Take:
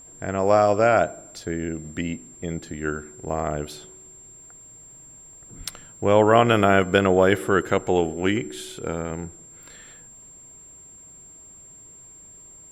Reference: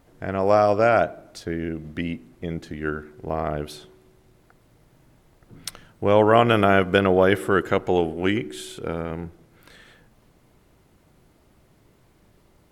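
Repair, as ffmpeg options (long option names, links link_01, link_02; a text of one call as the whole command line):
ffmpeg -i in.wav -filter_complex "[0:a]bandreject=frequency=7400:width=30,asplit=3[link_01][link_02][link_03];[link_01]afade=type=out:start_time=5.57:duration=0.02[link_04];[link_02]highpass=frequency=140:width=0.5412,highpass=frequency=140:width=1.3066,afade=type=in:start_time=5.57:duration=0.02,afade=type=out:start_time=5.69:duration=0.02[link_05];[link_03]afade=type=in:start_time=5.69:duration=0.02[link_06];[link_04][link_05][link_06]amix=inputs=3:normalize=0" out.wav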